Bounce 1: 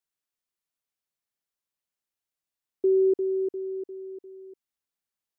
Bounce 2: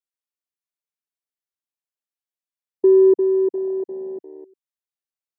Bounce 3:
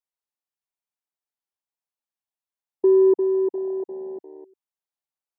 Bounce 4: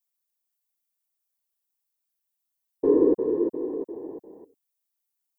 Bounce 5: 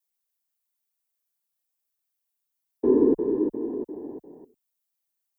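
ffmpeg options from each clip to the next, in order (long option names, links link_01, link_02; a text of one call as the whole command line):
ffmpeg -i in.wav -af "afwtdn=0.0251,highpass=200,volume=9dB" out.wav
ffmpeg -i in.wav -af "equalizer=frequency=850:width=1.7:gain=8.5,volume=-4dB" out.wav
ffmpeg -i in.wav -af "aemphasis=mode=production:type=75kf,afftfilt=real='hypot(re,im)*cos(2*PI*random(0))':imag='hypot(re,im)*sin(2*PI*random(1))':win_size=512:overlap=0.75,volume=2.5dB" out.wav
ffmpeg -i in.wav -af "afreqshift=-33" out.wav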